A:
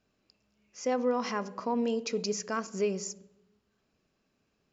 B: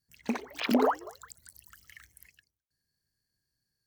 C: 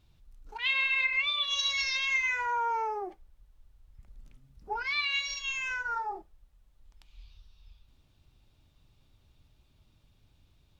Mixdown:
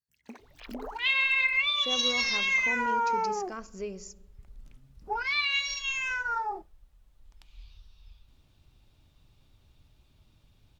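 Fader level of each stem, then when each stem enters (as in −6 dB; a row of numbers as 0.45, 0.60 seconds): −7.5, −15.0, +2.5 decibels; 1.00, 0.00, 0.40 seconds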